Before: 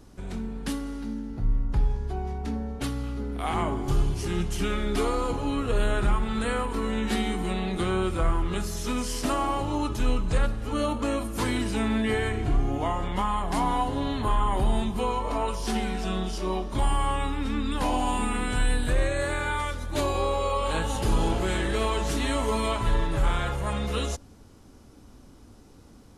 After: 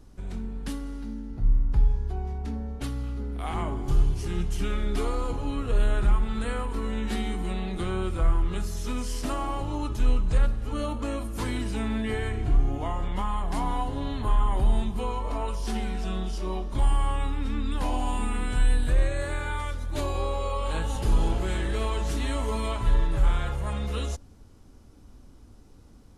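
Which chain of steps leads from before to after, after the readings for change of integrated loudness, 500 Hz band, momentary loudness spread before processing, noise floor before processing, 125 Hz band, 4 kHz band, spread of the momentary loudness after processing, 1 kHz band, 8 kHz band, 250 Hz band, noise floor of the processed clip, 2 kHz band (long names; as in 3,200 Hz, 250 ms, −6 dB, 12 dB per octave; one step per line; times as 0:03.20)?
−1.5 dB, −4.5 dB, 5 LU, −51 dBFS, +1.0 dB, −5.0 dB, 7 LU, −5.0 dB, −5.0 dB, −4.0 dB, −50 dBFS, −5.0 dB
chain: low-shelf EQ 84 Hz +10 dB
level −5 dB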